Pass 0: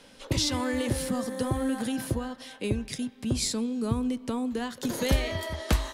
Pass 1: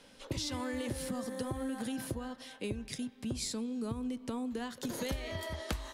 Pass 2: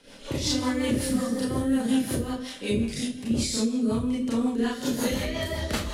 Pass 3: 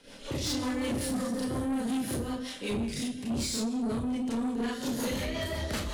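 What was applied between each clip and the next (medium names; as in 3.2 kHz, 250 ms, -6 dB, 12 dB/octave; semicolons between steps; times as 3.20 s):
compression 6:1, threshold -28 dBFS, peak gain reduction 10 dB; trim -5 dB
Schroeder reverb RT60 0.53 s, combs from 27 ms, DRR -8 dB; rotary cabinet horn 5.5 Hz; trim +4 dB
saturation -26 dBFS, distortion -11 dB; trim -1 dB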